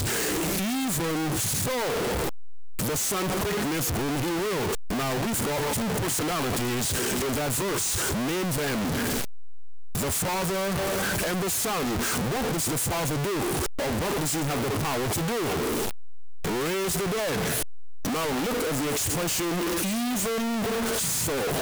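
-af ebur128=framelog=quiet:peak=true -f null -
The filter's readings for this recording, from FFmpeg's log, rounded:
Integrated loudness:
  I:         -26.5 LUFS
  Threshold: -36.6 LUFS
Loudness range:
  LRA:         1.7 LU
  Threshold: -46.8 LUFS
  LRA low:   -27.5 LUFS
  LRA high:  -25.9 LUFS
True peak:
  Peak:      -20.7 dBFS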